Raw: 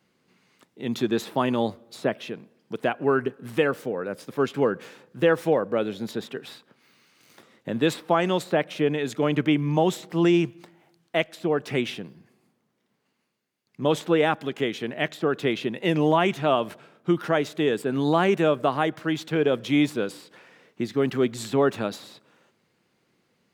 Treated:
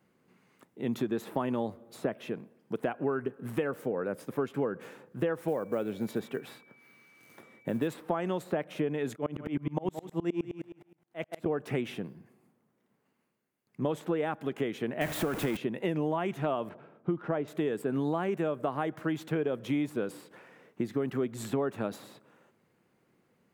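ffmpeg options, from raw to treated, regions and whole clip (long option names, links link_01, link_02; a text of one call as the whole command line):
ffmpeg -i in.wav -filter_complex "[0:a]asettb=1/sr,asplit=3[link_01][link_02][link_03];[link_01]atrim=end=5.484[link_04];[link_02]atrim=start=5.48:end=7.88,asetpts=PTS-STARTPTS,afade=type=in:duration=0.004:curve=qsin,afade=type=out:start_time=2.396:duration=0.004:curve=qsin,acrusher=bits=7:mode=log:mix=0:aa=0.000001,aeval=exprs='val(0)+0.002*sin(2*PI*2300*n/s)':channel_layout=same[link_05];[link_03]atrim=start=7.876[link_06];[link_04][link_05]acrossfade=duration=0.004:curve1=hsin:curve2=qsin[link_07];[link_07][link_06]acrossfade=duration=0.004:curve1=qsin:curve2=hsin,asettb=1/sr,asplit=3[link_08][link_09][link_10];[link_08]atrim=end=9.164[link_11];[link_09]atrim=start=9.16:end=11.46,asetpts=PTS-STARTPTS,afade=type=in:duration=0.004:curve=qsin,afade=type=out:start_time=2.296:duration=0.004:curve=qsin,highpass=57,aecho=1:1:172|344|516:0.282|0.0817|0.0237,atrim=end_sample=101430,aeval=exprs='val(0)*pow(10,-29*if(lt(mod(-9.6*n/s,1),2*abs(-9.6)/1000),1-mod(-9.6*n/s,1)/(2*abs(-9.6)/1000),(mod(-9.6*n/s,1)-2*abs(-9.6)/1000)/(1-2*abs(-9.6)/1000))/20)':channel_layout=same[link_12];[link_10]atrim=start=11.456[link_13];[link_11][link_12]acrossfade=duration=0.004:curve1=hsin:curve2=qsin[link_14];[link_14][link_13]acrossfade=duration=0.004:curve1=qsin:curve2=hsin,asettb=1/sr,asplit=3[link_15][link_16][link_17];[link_15]atrim=end=15.014[link_18];[link_16]atrim=start=15.01:end=15.57,asetpts=PTS-STARTPTS,afade=type=in:duration=0.004:curve=qsin,afade=type=out:start_time=0.556:duration=0.004:curve=qsin,aeval=exprs='val(0)+0.5*0.0596*sgn(val(0))':channel_layout=same,equalizer=frequency=410:width=5.3:gain=-7,bandreject=frequency=1200:width=23[link_19];[link_17]atrim=start=15.566[link_20];[link_18][link_19]acrossfade=duration=0.004:curve1=hsin:curve2=qsin[link_21];[link_21][link_20]acrossfade=duration=0.004:curve1=qsin:curve2=hsin,asettb=1/sr,asplit=3[link_22][link_23][link_24];[link_22]atrim=end=16.694[link_25];[link_23]atrim=start=16.69:end=17.48,asetpts=PTS-STARTPTS,afade=type=in:duration=0.004:curve=qsin,afade=type=out:start_time=0.786:duration=0.004:curve=qsin,lowpass=2500,equalizer=frequency=1800:width_type=o:width=1.1:gain=-4[link_26];[link_24]atrim=start=17.476[link_27];[link_25][link_26]acrossfade=duration=0.004:curve1=hsin:curve2=qsin[link_28];[link_28][link_27]acrossfade=duration=0.004:curve1=qsin:curve2=hsin,equalizer=frequency=4400:width_type=o:width=1.7:gain=-11,acompressor=threshold=-27dB:ratio=6" out.wav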